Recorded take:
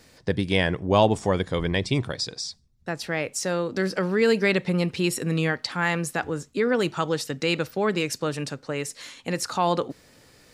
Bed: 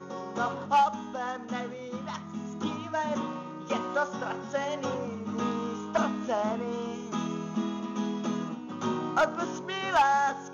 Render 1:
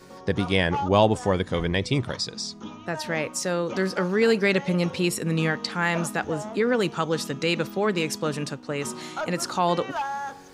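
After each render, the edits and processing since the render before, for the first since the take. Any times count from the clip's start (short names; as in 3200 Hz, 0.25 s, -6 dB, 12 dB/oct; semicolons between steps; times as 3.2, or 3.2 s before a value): add bed -6.5 dB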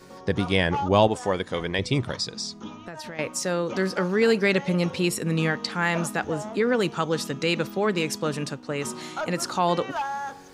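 1.07–1.79 low shelf 190 Hz -11 dB; 2.71–3.19 compressor 8:1, threshold -33 dBFS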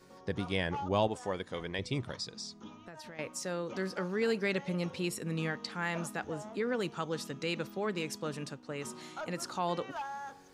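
gain -10.5 dB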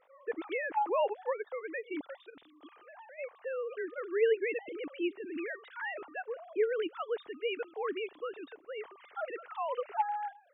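sine-wave speech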